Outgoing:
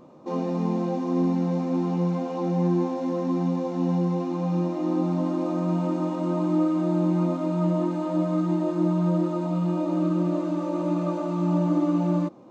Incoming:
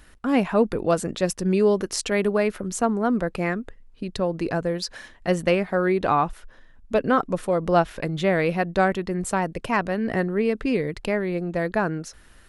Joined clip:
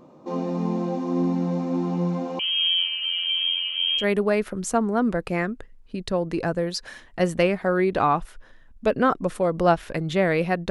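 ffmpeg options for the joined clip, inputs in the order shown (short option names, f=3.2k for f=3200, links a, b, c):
-filter_complex "[0:a]asettb=1/sr,asplit=3[a][b][c];[a]atrim=end=2.394[d];[b]atrim=start=2.39:end=4.05,asetpts=PTS-STARTPTS,afade=t=in:d=0.004:c=qsin,afade=t=out:st=1.656:d=0.004:c=qsin,lowpass=f=2.9k:t=q:w=0.5098,lowpass=f=2.9k:t=q:w=0.6013,lowpass=f=2.9k:t=q:w=0.9,lowpass=f=2.9k:t=q:w=2.563,afreqshift=-3400[e];[c]atrim=start=4.046[f];[d][e]acrossfade=d=0.004:c1=hsin:c2=qsin[g];[g][f]acrossfade=d=0.004:c1=qsin:c2=hsin,apad=whole_dur=10.7,atrim=end=10.7,atrim=end=4.05,asetpts=PTS-STARTPTS[h];[1:a]atrim=start=2.05:end=8.78,asetpts=PTS-STARTPTS[i];[h][i]acrossfade=d=0.08:c1=tri:c2=tri"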